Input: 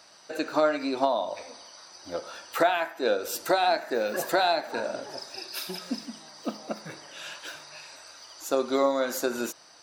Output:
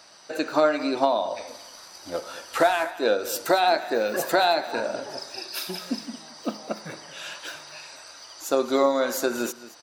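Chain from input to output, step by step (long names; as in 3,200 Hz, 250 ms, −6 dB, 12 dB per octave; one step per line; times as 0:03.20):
0:01.47–0:02.91: variable-slope delta modulation 64 kbit/s
single-tap delay 223 ms −17 dB
level +3 dB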